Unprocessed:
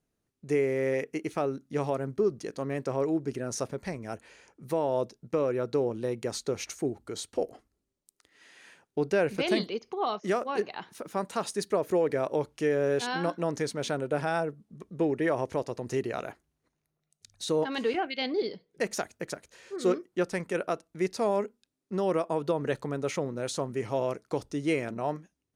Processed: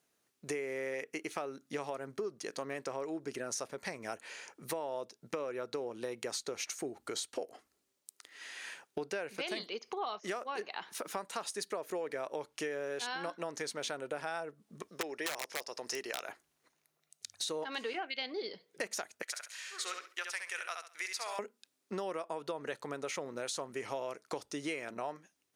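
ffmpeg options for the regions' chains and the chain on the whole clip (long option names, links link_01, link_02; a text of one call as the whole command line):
ffmpeg -i in.wav -filter_complex "[0:a]asettb=1/sr,asplit=3[link_01][link_02][link_03];[link_01]atrim=end=14.884[link_04];[link_02]atrim=start=14.88:end=16.29,asetpts=PTS-STARTPTS,afade=type=in:duration=0.004:curve=qsin,afade=type=out:start_time=1.406:duration=0.004:curve=qsin,highpass=frequency=520:poles=1,equalizer=frequency=5300:width=5.2:gain=12.5,aeval=exprs='(mod(14.1*val(0)+1,2)-1)/14.1':channel_layout=same[link_05];[link_03]atrim=start=16.286[link_06];[link_04][link_05]acrossfade=duration=0.004:curve1=hsin:curve2=qsin[link_07];[link_07][link_06]acrossfade=duration=0.004:curve1=qsin:curve2=hsin,asettb=1/sr,asplit=3[link_08][link_09][link_10];[link_08]atrim=end=19.224[link_11];[link_09]atrim=start=19.22:end=21.39,asetpts=PTS-STARTPTS,afade=type=in:duration=0.004:curve=qsin,afade=type=out:start_time=2.166:duration=0.004:curve=qsin,highpass=1500,aecho=1:1:67|134|201:0.531|0.106|0.0212,atrim=end_sample=95697[link_12];[link_10]atrim=start=21.386[link_13];[link_11][link_12]acrossfade=duration=0.004:curve1=hsin:curve2=qsin[link_14];[link_14][link_13]acrossfade=duration=0.004:curve1=qsin:curve2=hsin,highpass=frequency=970:poles=1,acompressor=threshold=-46dB:ratio=5,volume=9.5dB" out.wav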